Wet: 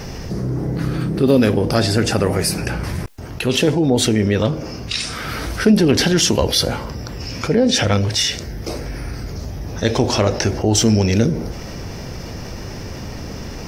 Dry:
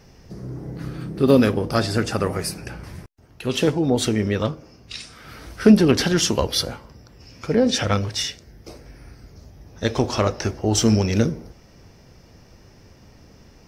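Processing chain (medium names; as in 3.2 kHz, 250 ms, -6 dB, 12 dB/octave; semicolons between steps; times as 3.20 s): dynamic bell 1.2 kHz, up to -6 dB, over -43 dBFS, Q 3.2; level flattener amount 50%; trim -1.5 dB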